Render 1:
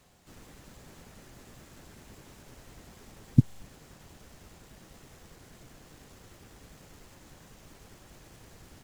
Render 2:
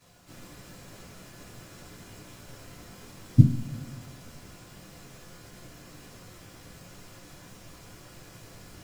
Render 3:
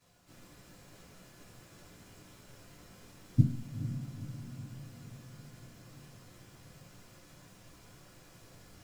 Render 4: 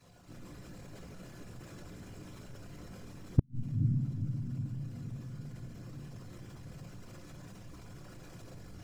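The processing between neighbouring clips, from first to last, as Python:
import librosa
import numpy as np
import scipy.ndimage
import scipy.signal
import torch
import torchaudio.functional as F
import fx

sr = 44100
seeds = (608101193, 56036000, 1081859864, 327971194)

y1 = fx.rev_double_slope(x, sr, seeds[0], early_s=0.32, late_s=2.3, knee_db=-21, drr_db=-10.0)
y1 = y1 * librosa.db_to_amplitude(-5.5)
y2 = fx.echo_diffused(y1, sr, ms=484, feedback_pct=61, wet_db=-10.0)
y2 = y2 * librosa.db_to_amplitude(-8.5)
y3 = fx.envelope_sharpen(y2, sr, power=1.5)
y3 = fx.gate_flip(y3, sr, shuts_db=-17.0, range_db=-42)
y3 = y3 * librosa.db_to_amplitude(7.5)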